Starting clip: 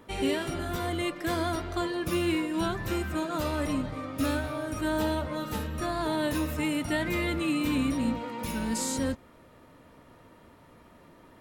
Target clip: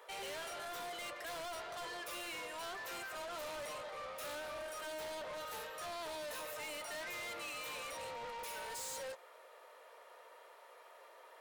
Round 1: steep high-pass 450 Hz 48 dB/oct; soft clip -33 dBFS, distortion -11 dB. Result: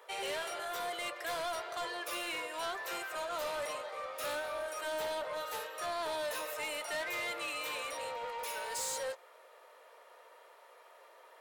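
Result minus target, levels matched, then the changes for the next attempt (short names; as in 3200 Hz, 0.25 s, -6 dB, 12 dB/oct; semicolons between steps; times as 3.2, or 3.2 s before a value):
soft clip: distortion -6 dB
change: soft clip -42.5 dBFS, distortion -5 dB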